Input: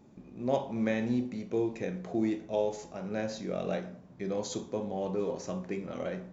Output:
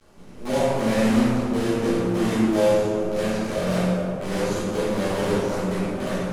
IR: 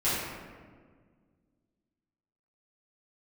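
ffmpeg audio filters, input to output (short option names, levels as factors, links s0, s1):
-filter_complex "[0:a]asuperstop=centerf=1400:order=12:qfactor=6.8,acrusher=bits=6:dc=4:mix=0:aa=0.000001[s0];[1:a]atrim=start_sample=2205,asetrate=24696,aresample=44100[s1];[s0][s1]afir=irnorm=-1:irlink=0,volume=0.447"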